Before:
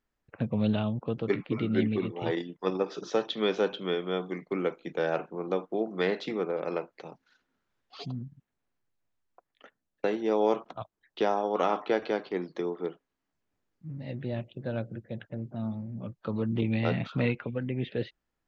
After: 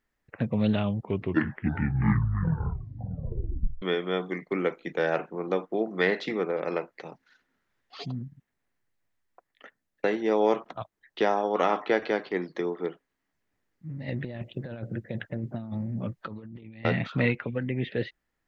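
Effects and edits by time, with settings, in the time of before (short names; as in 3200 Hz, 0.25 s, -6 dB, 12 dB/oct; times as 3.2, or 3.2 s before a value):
0.72 tape stop 3.10 s
14.08–16.85 negative-ratio compressor -36 dBFS, ratio -0.5
whole clip: bell 1900 Hz +7.5 dB 0.42 oct; gain +2 dB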